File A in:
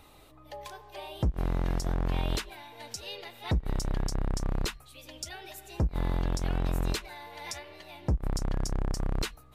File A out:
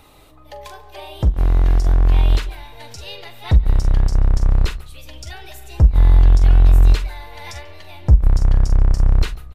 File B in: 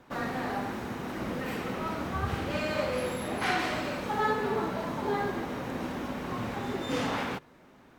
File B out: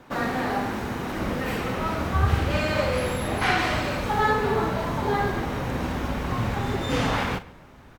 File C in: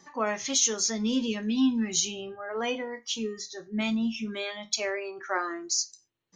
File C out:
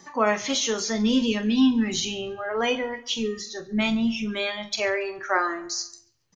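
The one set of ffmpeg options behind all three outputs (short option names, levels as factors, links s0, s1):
-filter_complex "[0:a]asplit=2[s0][s1];[s1]adelay=43,volume=0.224[s2];[s0][s2]amix=inputs=2:normalize=0,acrossover=split=4200[s3][s4];[s4]acompressor=threshold=0.00708:ratio=4:attack=1:release=60[s5];[s3][s5]amix=inputs=2:normalize=0,asplit=2[s6][s7];[s7]adelay=140,lowpass=f=3700:p=1,volume=0.1,asplit=2[s8][s9];[s9]adelay=140,lowpass=f=3700:p=1,volume=0.41,asplit=2[s10][s11];[s11]adelay=140,lowpass=f=3700:p=1,volume=0.41[s12];[s8][s10][s12]amix=inputs=3:normalize=0[s13];[s6][s13]amix=inputs=2:normalize=0,asubboost=boost=4.5:cutoff=110,volume=2.11"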